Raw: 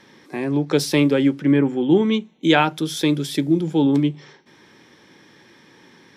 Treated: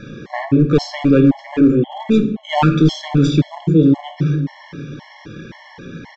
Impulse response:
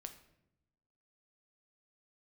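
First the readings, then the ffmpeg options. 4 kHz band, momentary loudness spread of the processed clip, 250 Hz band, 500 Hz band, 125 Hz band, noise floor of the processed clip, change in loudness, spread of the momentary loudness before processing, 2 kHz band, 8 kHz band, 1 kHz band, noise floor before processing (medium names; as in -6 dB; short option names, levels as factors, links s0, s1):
-1.5 dB, 20 LU, +4.0 dB, +2.0 dB, +9.0 dB, -43 dBFS, +3.5 dB, 6 LU, -2.5 dB, no reading, +2.5 dB, -52 dBFS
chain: -filter_complex "[0:a]aemphasis=mode=reproduction:type=bsi,areverse,acompressor=threshold=0.0891:ratio=10,areverse,asplit=2[s0][s1];[s1]adelay=583.1,volume=0.141,highshelf=f=4000:g=-13.1[s2];[s0][s2]amix=inputs=2:normalize=0,flanger=delay=1.3:depth=6.4:regen=-58:speed=0.5:shape=sinusoidal,aresample=16000,volume=15,asoftclip=hard,volume=0.0668,aresample=44100[s3];[1:a]atrim=start_sample=2205[s4];[s3][s4]afir=irnorm=-1:irlink=0,alimiter=level_in=22.4:limit=0.891:release=50:level=0:latency=1,afftfilt=real='re*gt(sin(2*PI*1.9*pts/sr)*(1-2*mod(floor(b*sr/1024/560),2)),0)':imag='im*gt(sin(2*PI*1.9*pts/sr)*(1-2*mod(floor(b*sr/1024/560),2)),0)':win_size=1024:overlap=0.75,volume=0.75"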